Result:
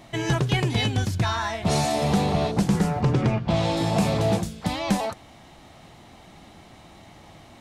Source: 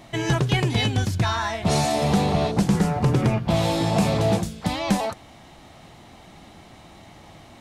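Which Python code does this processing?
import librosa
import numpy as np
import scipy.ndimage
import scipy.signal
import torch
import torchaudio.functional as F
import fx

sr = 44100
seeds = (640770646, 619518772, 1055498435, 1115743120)

y = fx.lowpass(x, sr, hz=6200.0, slope=12, at=(3.01, 3.77))
y = y * librosa.db_to_amplitude(-1.5)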